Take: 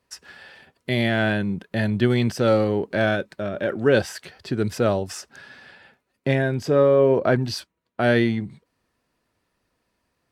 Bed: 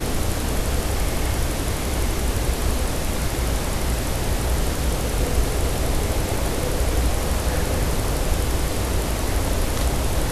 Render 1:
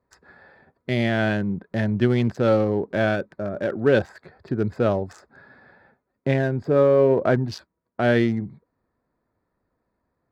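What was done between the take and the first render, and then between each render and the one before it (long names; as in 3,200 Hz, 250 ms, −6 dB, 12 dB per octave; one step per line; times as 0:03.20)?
adaptive Wiener filter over 15 samples
high-shelf EQ 5,000 Hz −7 dB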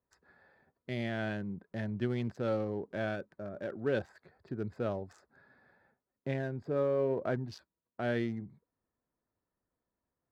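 level −13.5 dB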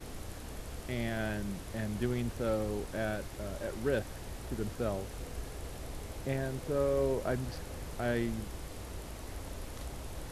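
mix in bed −20.5 dB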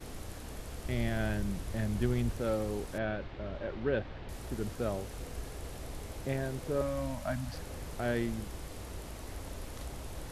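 0:00.84–0:02.36: low-shelf EQ 120 Hz +8 dB
0:02.98–0:04.29: low-pass filter 3,700 Hz 24 dB per octave
0:06.81–0:07.54: elliptic band-stop filter 290–580 Hz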